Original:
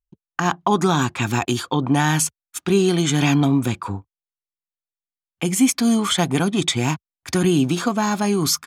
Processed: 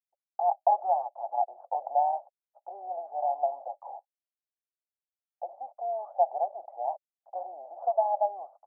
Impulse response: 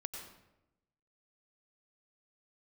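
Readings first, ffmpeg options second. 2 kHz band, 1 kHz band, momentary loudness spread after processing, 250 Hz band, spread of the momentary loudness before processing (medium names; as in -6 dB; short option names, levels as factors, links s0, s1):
under -40 dB, -2.0 dB, 16 LU, under -40 dB, 8 LU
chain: -filter_complex "[0:a]asplit=2[s0][s1];[s1]acrusher=bits=4:mix=0:aa=0.000001,volume=0.708[s2];[s0][s2]amix=inputs=2:normalize=0,asuperpass=centerf=690:order=8:qfactor=2.7,volume=0.841"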